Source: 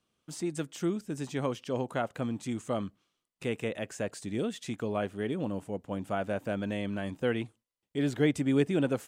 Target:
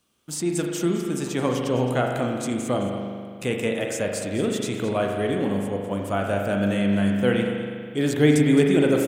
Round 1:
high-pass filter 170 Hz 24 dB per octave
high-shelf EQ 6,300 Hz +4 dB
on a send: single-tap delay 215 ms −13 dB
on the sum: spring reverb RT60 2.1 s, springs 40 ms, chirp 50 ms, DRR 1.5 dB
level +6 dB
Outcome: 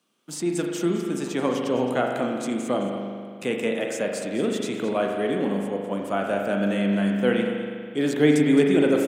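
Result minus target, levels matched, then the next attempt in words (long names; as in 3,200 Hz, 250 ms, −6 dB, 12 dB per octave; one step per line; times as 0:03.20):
125 Hz band −5.0 dB; 8,000 Hz band −3.0 dB
high-shelf EQ 6,300 Hz +10.5 dB
on a send: single-tap delay 215 ms −13 dB
on the sum: spring reverb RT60 2.1 s, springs 40 ms, chirp 50 ms, DRR 1.5 dB
level +6 dB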